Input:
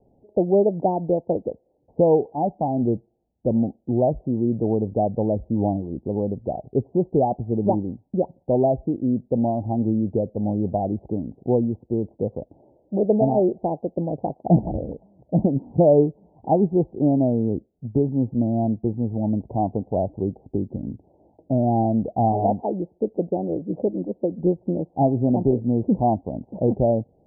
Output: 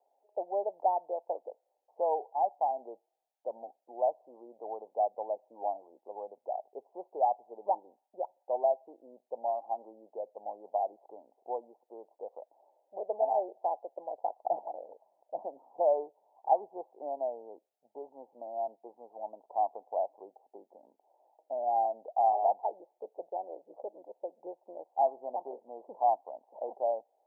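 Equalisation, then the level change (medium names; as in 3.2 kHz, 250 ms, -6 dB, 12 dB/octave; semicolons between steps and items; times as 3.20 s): high-pass 770 Hz 24 dB/octave; 0.0 dB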